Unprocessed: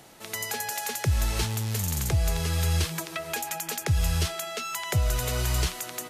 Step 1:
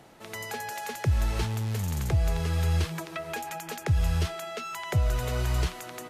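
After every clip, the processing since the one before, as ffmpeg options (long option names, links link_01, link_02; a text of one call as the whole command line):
ffmpeg -i in.wav -af "highshelf=frequency=3400:gain=-11.5" out.wav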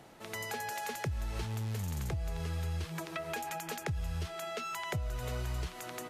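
ffmpeg -i in.wav -af "acompressor=threshold=-31dB:ratio=6,volume=-2dB" out.wav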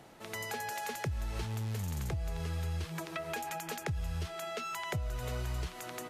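ffmpeg -i in.wav -af anull out.wav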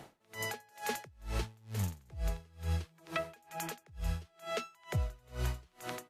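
ffmpeg -i in.wav -af "aeval=exprs='val(0)*pow(10,-31*(0.5-0.5*cos(2*PI*2.2*n/s))/20)':channel_layout=same,volume=4.5dB" out.wav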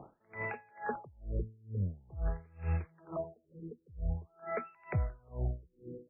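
ffmpeg -i in.wav -af "afftfilt=real='re*lt(b*sr/1024,500*pow(2800/500,0.5+0.5*sin(2*PI*0.47*pts/sr)))':imag='im*lt(b*sr/1024,500*pow(2800/500,0.5+0.5*sin(2*PI*0.47*pts/sr)))':win_size=1024:overlap=0.75,volume=1dB" out.wav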